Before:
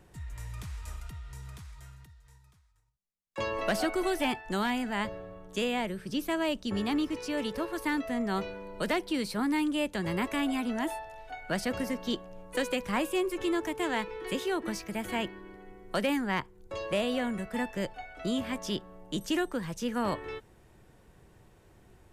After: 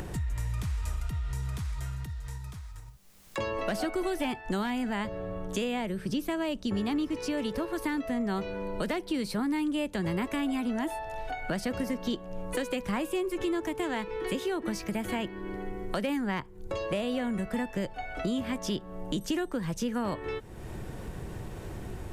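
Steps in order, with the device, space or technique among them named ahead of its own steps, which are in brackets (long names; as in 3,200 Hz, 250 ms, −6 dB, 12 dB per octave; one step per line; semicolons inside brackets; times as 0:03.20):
upward and downward compression (upward compression, threshold −31 dBFS; downward compressor 3 to 1, threshold −33 dBFS, peak gain reduction 7 dB)
low-shelf EQ 480 Hz +5 dB
level +1.5 dB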